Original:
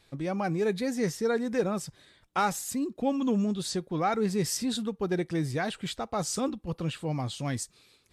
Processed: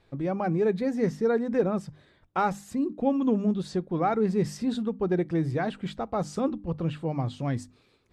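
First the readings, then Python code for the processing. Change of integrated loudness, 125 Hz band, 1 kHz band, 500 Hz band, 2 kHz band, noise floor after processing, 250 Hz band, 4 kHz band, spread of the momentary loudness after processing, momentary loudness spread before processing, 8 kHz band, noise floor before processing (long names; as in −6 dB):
+2.0 dB, +3.0 dB, +1.5 dB, +3.0 dB, −2.0 dB, −64 dBFS, +3.0 dB, −8.0 dB, 7 LU, 6 LU, −13.0 dB, −65 dBFS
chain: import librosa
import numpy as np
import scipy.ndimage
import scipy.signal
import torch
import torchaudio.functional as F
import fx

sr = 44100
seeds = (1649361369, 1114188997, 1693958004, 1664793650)

y = fx.lowpass(x, sr, hz=1000.0, slope=6)
y = fx.hum_notches(y, sr, base_hz=50, count=6)
y = y * 10.0 ** (4.0 / 20.0)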